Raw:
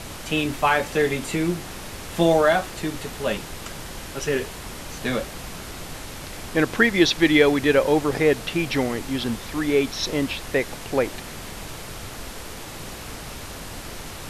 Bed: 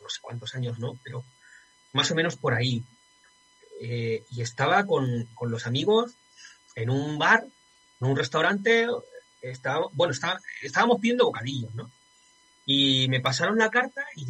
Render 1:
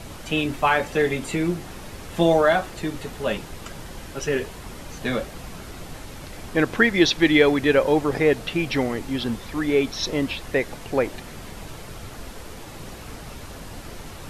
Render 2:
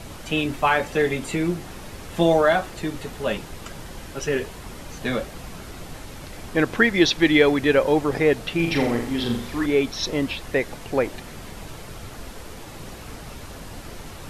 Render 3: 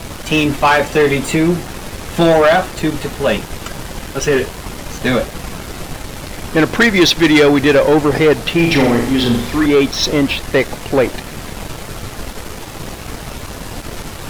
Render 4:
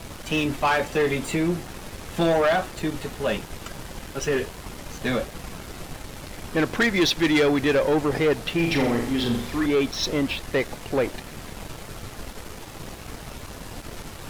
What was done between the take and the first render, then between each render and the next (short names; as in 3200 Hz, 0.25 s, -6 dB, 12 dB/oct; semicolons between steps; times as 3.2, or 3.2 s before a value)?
denoiser 6 dB, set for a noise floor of -37 dBFS
8.55–9.66 flutter echo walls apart 7.2 m, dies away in 0.55 s
sample leveller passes 3
gain -10 dB